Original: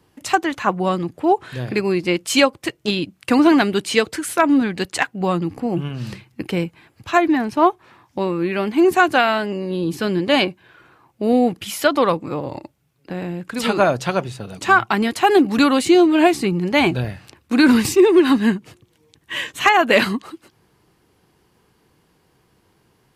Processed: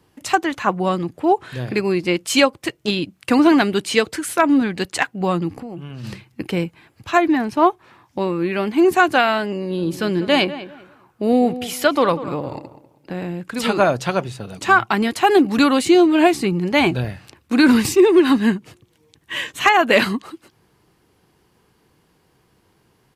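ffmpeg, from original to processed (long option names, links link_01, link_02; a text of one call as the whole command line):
ffmpeg -i in.wav -filter_complex "[0:a]asplit=3[link_01][link_02][link_03];[link_01]afade=type=out:start_time=5.58:duration=0.02[link_04];[link_02]acompressor=threshold=-29dB:ratio=6:attack=3.2:release=140:knee=1:detection=peak,afade=type=in:start_time=5.58:duration=0.02,afade=type=out:start_time=6.03:duration=0.02[link_05];[link_03]afade=type=in:start_time=6.03:duration=0.02[link_06];[link_04][link_05][link_06]amix=inputs=3:normalize=0,asplit=3[link_07][link_08][link_09];[link_07]afade=type=out:start_time=9.77:duration=0.02[link_10];[link_08]asplit=2[link_11][link_12];[link_12]adelay=196,lowpass=frequency=2000:poles=1,volume=-13.5dB,asplit=2[link_13][link_14];[link_14]adelay=196,lowpass=frequency=2000:poles=1,volume=0.26,asplit=2[link_15][link_16];[link_16]adelay=196,lowpass=frequency=2000:poles=1,volume=0.26[link_17];[link_11][link_13][link_15][link_17]amix=inputs=4:normalize=0,afade=type=in:start_time=9.77:duration=0.02,afade=type=out:start_time=13.23:duration=0.02[link_18];[link_09]afade=type=in:start_time=13.23:duration=0.02[link_19];[link_10][link_18][link_19]amix=inputs=3:normalize=0" out.wav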